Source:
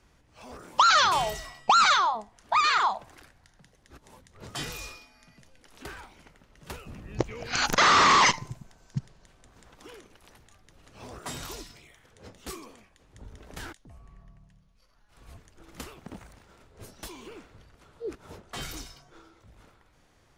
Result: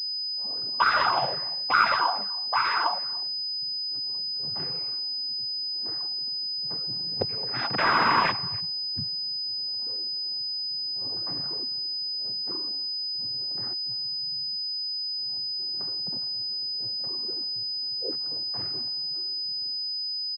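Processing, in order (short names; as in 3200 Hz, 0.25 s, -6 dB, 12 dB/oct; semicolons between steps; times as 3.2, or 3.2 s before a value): gate with hold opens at -48 dBFS; low-pass opened by the level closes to 720 Hz, open at -20 dBFS; noise vocoder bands 16; speakerphone echo 0.29 s, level -22 dB; pulse-width modulation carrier 5000 Hz; gain -1 dB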